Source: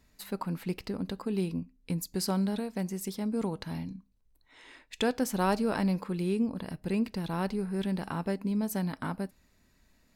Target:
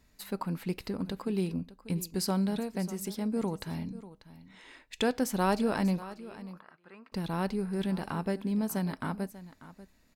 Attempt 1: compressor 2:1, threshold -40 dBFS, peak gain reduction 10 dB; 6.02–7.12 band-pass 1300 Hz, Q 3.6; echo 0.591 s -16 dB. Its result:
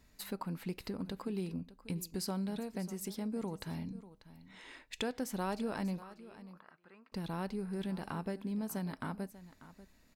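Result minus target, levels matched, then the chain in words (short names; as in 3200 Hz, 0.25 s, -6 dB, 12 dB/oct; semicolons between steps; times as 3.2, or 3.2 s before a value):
compressor: peak gain reduction +10 dB
6.02–7.12 band-pass 1300 Hz, Q 3.6; echo 0.591 s -16 dB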